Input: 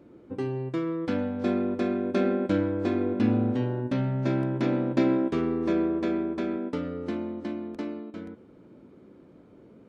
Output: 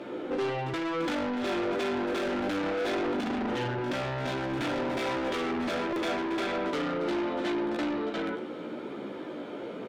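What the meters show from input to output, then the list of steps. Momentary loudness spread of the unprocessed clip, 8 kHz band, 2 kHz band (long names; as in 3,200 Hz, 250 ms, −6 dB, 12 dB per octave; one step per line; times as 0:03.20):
10 LU, can't be measured, +6.5 dB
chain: parametric band 3,400 Hz +7 dB 0.4 octaves
on a send: single-tap delay 98 ms −16 dB
on the sum: multi-voice chorus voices 2, 0.61 Hz, delay 15 ms, depth 2 ms
in parallel at −3.5 dB: soft clipping −28 dBFS, distortion −10 dB
on the sum: mid-hump overdrive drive 34 dB, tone 2,900 Hz, clips at −11.5 dBFS
brickwall limiter −19.5 dBFS, peak gain reduction 7 dB
low-shelf EQ 170 Hz −8 dB
notch filter 1,100 Hz, Q 13
backwards echo 74 ms −11.5 dB
buffer that repeats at 0:05.93, samples 128, times 10
level −6 dB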